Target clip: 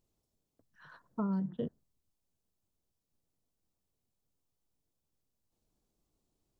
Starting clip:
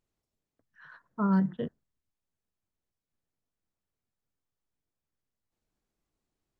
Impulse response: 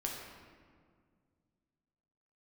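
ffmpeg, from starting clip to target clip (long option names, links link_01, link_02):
-af "acompressor=threshold=-35dB:ratio=8,equalizer=frequency=1800:width_type=o:width=1.3:gain=-11,volume=4.5dB"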